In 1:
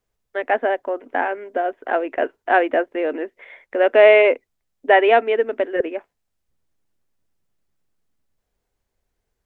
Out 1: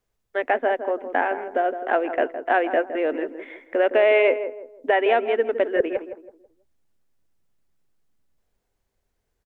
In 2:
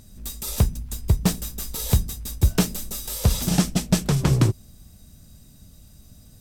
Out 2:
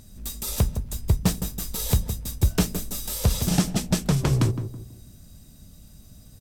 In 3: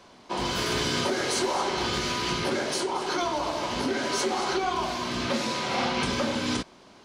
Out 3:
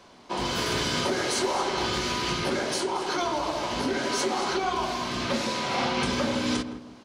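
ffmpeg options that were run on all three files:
-filter_complex "[0:a]alimiter=limit=-9dB:level=0:latency=1:release=497,asplit=2[a][b];[b]adelay=163,lowpass=f=900:p=1,volume=-8.5dB,asplit=2[c][d];[d]adelay=163,lowpass=f=900:p=1,volume=0.37,asplit=2[e][f];[f]adelay=163,lowpass=f=900:p=1,volume=0.37,asplit=2[g][h];[h]adelay=163,lowpass=f=900:p=1,volume=0.37[i];[c][e][g][i]amix=inputs=4:normalize=0[j];[a][j]amix=inputs=2:normalize=0"

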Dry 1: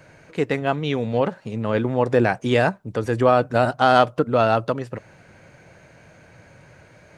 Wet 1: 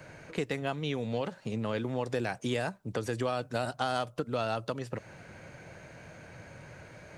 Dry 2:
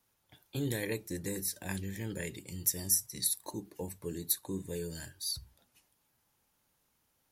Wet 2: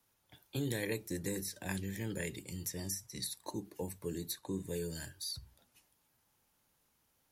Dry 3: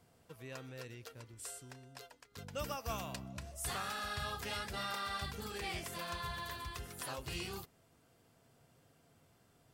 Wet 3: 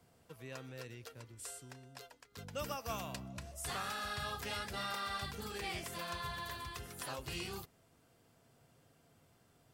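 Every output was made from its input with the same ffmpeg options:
-filter_complex "[0:a]acrossover=split=100|3100|7700[a][b][c][d];[a]acompressor=threshold=-50dB:ratio=4[e];[b]acompressor=threshold=-32dB:ratio=4[f];[c]acompressor=threshold=-43dB:ratio=4[g];[d]acompressor=threshold=-47dB:ratio=4[h];[e][f][g][h]amix=inputs=4:normalize=0"

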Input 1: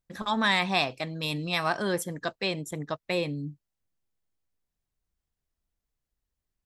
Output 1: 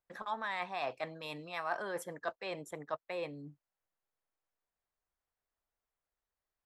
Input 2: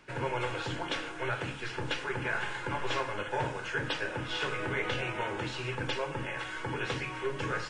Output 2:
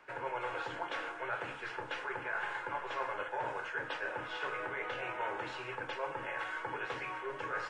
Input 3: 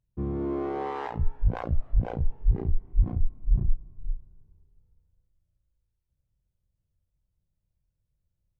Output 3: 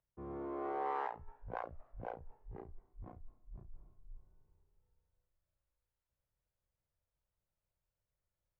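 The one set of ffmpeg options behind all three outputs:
-filter_complex "[0:a]areverse,acompressor=threshold=-33dB:ratio=10,areverse,acrossover=split=460 2000:gain=0.141 1 0.224[a][b][c];[a][b][c]amix=inputs=3:normalize=0,volume=3dB"

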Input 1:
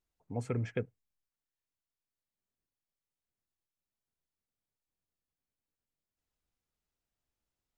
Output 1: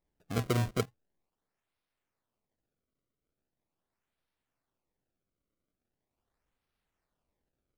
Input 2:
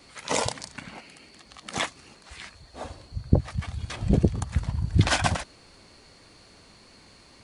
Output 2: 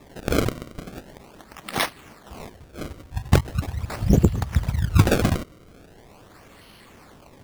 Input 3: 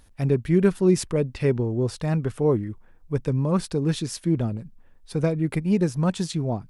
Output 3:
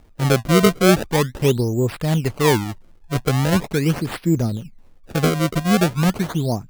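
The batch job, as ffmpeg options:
-af "acrusher=samples=29:mix=1:aa=0.000001:lfo=1:lforange=46.4:lforate=0.41,asoftclip=type=hard:threshold=-9dB,volume=4.5dB"

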